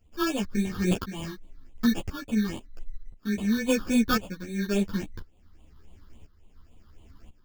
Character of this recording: aliases and images of a low sample rate 2000 Hz, jitter 0%; phasing stages 6, 3.6 Hz, lowest notch 640–1500 Hz; tremolo saw up 0.96 Hz, depth 80%; a shimmering, thickened sound

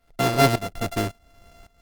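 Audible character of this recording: a buzz of ramps at a fixed pitch in blocks of 64 samples; tremolo saw up 1.8 Hz, depth 90%; Opus

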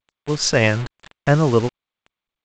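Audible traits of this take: a quantiser's noise floor 6-bit, dither none; G.722

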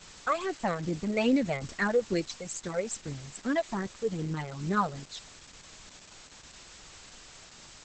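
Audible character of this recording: phasing stages 12, 2.4 Hz, lowest notch 280–1100 Hz; a quantiser's noise floor 8-bit, dither triangular; Opus

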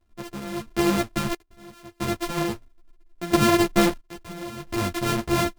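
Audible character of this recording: a buzz of ramps at a fixed pitch in blocks of 128 samples; random-step tremolo 1.5 Hz, depth 95%; a shimmering, thickened sound

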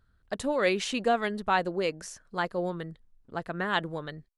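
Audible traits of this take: noise floor -67 dBFS; spectral tilt -4.5 dB/oct

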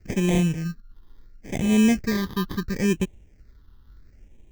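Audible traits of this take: aliases and images of a low sample rate 1400 Hz, jitter 0%; phasing stages 6, 0.73 Hz, lowest notch 610–1300 Hz

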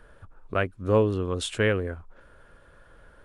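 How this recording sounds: noise floor -56 dBFS; spectral tilt -5.0 dB/oct

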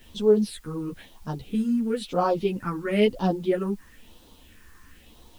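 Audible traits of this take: phasing stages 4, 1 Hz, lowest notch 590–2000 Hz; a quantiser's noise floor 10-bit, dither triangular; a shimmering, thickened sound

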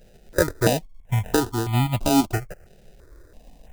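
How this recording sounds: tremolo saw up 5.9 Hz, depth 35%; aliases and images of a low sample rate 1100 Hz, jitter 0%; notches that jump at a steady rate 3 Hz 290–1600 Hz

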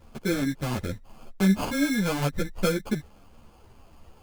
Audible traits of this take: aliases and images of a low sample rate 1900 Hz, jitter 0%; a shimmering, thickened sound

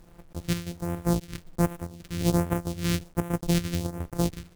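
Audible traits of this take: a buzz of ramps at a fixed pitch in blocks of 256 samples; phasing stages 2, 1.3 Hz, lowest notch 730–4300 Hz; a quantiser's noise floor 10-bit, dither none; chopped level 1.5 Hz, depth 60%, duty 80%

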